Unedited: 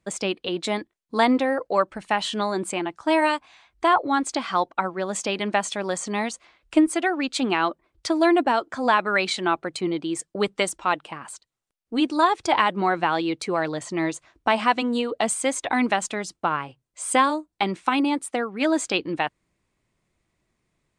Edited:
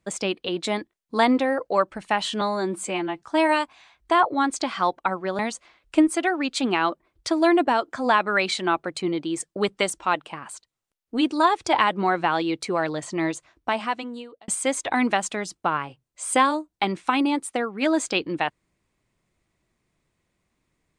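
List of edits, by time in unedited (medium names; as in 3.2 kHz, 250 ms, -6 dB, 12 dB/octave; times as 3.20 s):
2.41–2.95 s: stretch 1.5×
5.12–6.18 s: delete
14.05–15.27 s: fade out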